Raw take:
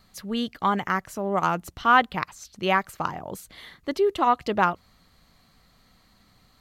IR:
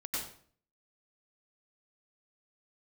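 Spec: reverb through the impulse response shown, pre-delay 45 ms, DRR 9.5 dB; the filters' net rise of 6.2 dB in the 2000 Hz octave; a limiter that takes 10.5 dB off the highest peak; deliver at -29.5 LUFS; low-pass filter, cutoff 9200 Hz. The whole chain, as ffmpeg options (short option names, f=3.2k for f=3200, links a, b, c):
-filter_complex "[0:a]lowpass=9.2k,equalizer=f=2k:t=o:g=8.5,alimiter=limit=-12dB:level=0:latency=1,asplit=2[a][b];[1:a]atrim=start_sample=2205,adelay=45[c];[b][c]afir=irnorm=-1:irlink=0,volume=-12.5dB[d];[a][d]amix=inputs=2:normalize=0,volume=-3.5dB"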